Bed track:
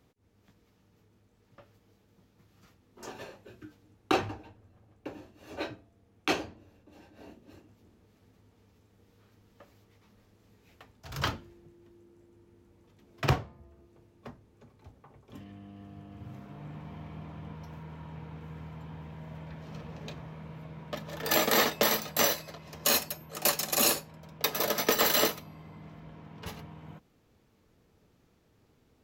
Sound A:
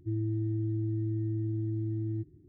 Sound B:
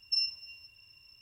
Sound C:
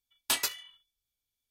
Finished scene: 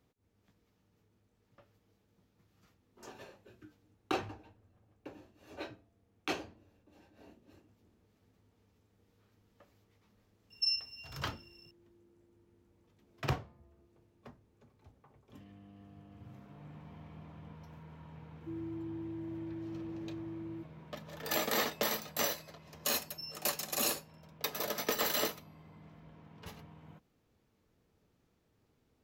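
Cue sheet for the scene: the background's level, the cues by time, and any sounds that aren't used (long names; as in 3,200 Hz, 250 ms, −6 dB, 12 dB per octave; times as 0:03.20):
bed track −7.5 dB
0:10.50: mix in B −2 dB
0:18.40: mix in A −3 dB + high-pass filter 290 Hz
0:23.06: mix in B −16 dB
not used: C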